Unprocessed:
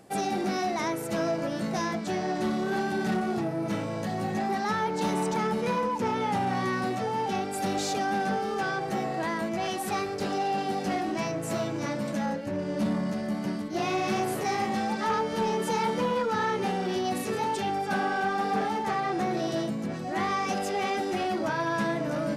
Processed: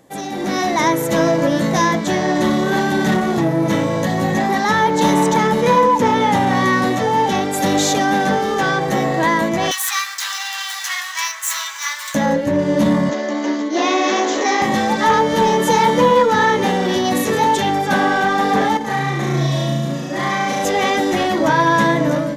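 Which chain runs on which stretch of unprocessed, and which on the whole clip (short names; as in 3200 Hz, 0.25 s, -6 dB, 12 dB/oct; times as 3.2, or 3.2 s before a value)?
9.71–12.15 median filter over 3 samples + steep high-pass 1100 Hz + high shelf 5000 Hz +10.5 dB
13.09–14.62 steep high-pass 230 Hz 96 dB/oct + careless resampling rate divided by 3×, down none, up filtered
18.77–20.65 metallic resonator 69 Hz, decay 0.23 s, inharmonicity 0.008 + flutter echo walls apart 6.1 m, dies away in 1.3 s
whole clip: ripple EQ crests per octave 1.1, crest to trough 7 dB; AGC gain up to 11 dB; gain +2 dB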